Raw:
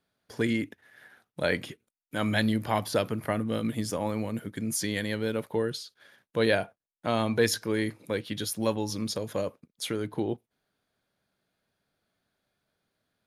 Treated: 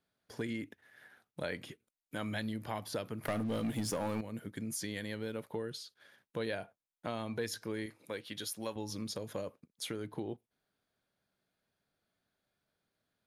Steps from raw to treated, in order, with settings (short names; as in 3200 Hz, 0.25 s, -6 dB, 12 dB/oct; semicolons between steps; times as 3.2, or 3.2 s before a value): 3.25–4.21 sample leveller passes 3; 7.86–8.76 low shelf 320 Hz -10 dB; compressor 2.5:1, threshold -32 dBFS, peak gain reduction 9.5 dB; gain -5 dB